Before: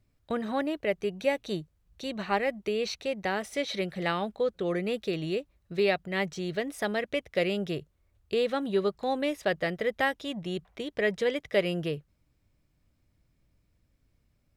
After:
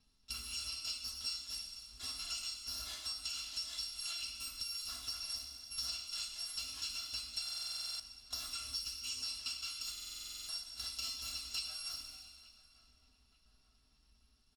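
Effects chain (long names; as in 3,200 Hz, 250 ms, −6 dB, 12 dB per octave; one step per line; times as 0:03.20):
samples in bit-reversed order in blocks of 256 samples
low-pass filter 6,400 Hz 12 dB per octave
soft clipping −20.5 dBFS, distortion −23 dB
coupled-rooms reverb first 0.52 s, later 1.9 s, DRR −5 dB
downward compressor 6 to 1, threshold −40 dBFS, peak gain reduction 19 dB
pitch-shifted copies added −3 semitones −13 dB
graphic EQ with 10 bands 125 Hz −9 dB, 250 Hz +3 dB, 500 Hz −12 dB, 2,000 Hz −6 dB, 4,000 Hz +9 dB
on a send: feedback echo with a low-pass in the loop 888 ms, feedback 55%, low-pass 2,300 Hz, level −18 dB
on the sum: buffer that repeats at 0:07.44/0:09.93, samples 2,048, times 11
level −3.5 dB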